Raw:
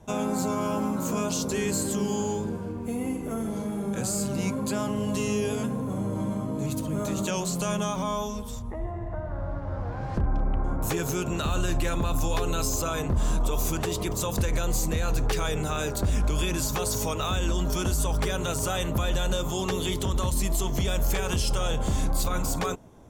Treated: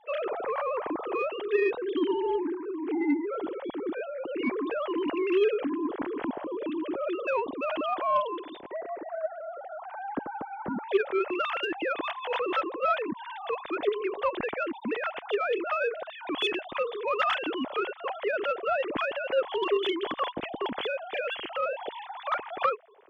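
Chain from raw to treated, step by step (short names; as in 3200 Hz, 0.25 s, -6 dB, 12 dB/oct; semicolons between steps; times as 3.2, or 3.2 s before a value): sine-wave speech; added harmonics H 3 -21 dB, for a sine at -11.5 dBFS; gain -1.5 dB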